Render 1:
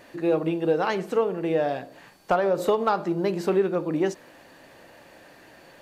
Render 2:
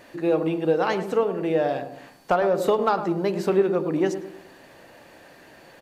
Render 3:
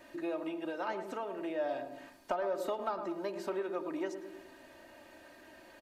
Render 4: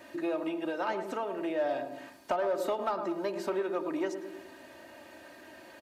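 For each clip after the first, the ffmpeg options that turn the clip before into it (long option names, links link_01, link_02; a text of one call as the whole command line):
ffmpeg -i in.wav -filter_complex "[0:a]asplit=2[link_01][link_02];[link_02]adelay=106,lowpass=frequency=950:poles=1,volume=-8.5dB,asplit=2[link_03][link_04];[link_04]adelay=106,lowpass=frequency=950:poles=1,volume=0.47,asplit=2[link_05][link_06];[link_06]adelay=106,lowpass=frequency=950:poles=1,volume=0.47,asplit=2[link_07][link_08];[link_08]adelay=106,lowpass=frequency=950:poles=1,volume=0.47,asplit=2[link_09][link_10];[link_10]adelay=106,lowpass=frequency=950:poles=1,volume=0.47[link_11];[link_01][link_03][link_05][link_07][link_09][link_11]amix=inputs=6:normalize=0,volume=1dB" out.wav
ffmpeg -i in.wav -filter_complex "[0:a]acrossover=split=590|1500[link_01][link_02][link_03];[link_01]acompressor=threshold=-35dB:ratio=4[link_04];[link_02]acompressor=threshold=-27dB:ratio=4[link_05];[link_03]acompressor=threshold=-44dB:ratio=4[link_06];[link_04][link_05][link_06]amix=inputs=3:normalize=0,aecho=1:1:3.2:0.7,volume=-8.5dB" out.wav
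ffmpeg -i in.wav -filter_complex "[0:a]highpass=76,asplit=2[link_01][link_02];[link_02]volume=30.5dB,asoftclip=hard,volume=-30.5dB,volume=-3dB[link_03];[link_01][link_03]amix=inputs=2:normalize=0" out.wav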